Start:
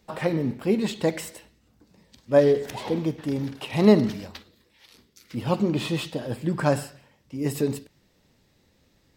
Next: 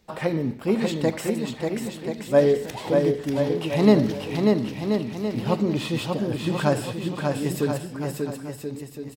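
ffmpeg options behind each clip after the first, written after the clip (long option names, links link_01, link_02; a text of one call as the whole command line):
ffmpeg -i in.wav -af "aecho=1:1:590|1032|1364|1613|1800:0.631|0.398|0.251|0.158|0.1" out.wav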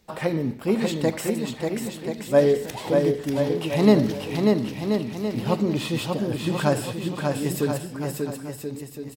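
ffmpeg -i in.wav -af "equalizer=frequency=14000:width_type=o:width=1.4:gain=4.5" out.wav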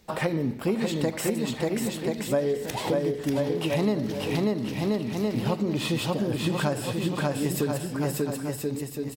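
ffmpeg -i in.wav -af "acompressor=threshold=-26dB:ratio=6,volume=3.5dB" out.wav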